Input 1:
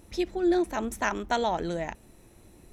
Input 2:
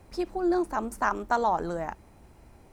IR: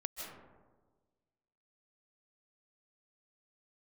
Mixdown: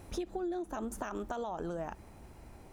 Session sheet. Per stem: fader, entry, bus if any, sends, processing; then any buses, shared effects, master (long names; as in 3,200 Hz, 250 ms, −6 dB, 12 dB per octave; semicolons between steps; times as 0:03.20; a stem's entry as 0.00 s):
−2.5 dB, 0.00 s, no send, de-essing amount 70%; parametric band 760 Hz +7.5 dB 0.35 octaves; automatic ducking −13 dB, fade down 1.40 s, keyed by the second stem
+1.0 dB, 0.00 s, no send, brickwall limiter −20.5 dBFS, peak gain reduction 8.5 dB; downward compressor, threshold −32 dBFS, peak gain reduction 8.5 dB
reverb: not used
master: downward compressor 6 to 1, threshold −34 dBFS, peak gain reduction 10.5 dB